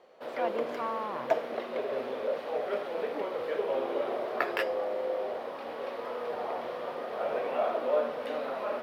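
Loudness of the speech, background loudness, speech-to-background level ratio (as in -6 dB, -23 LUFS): -36.5 LUFS, -33.0 LUFS, -3.5 dB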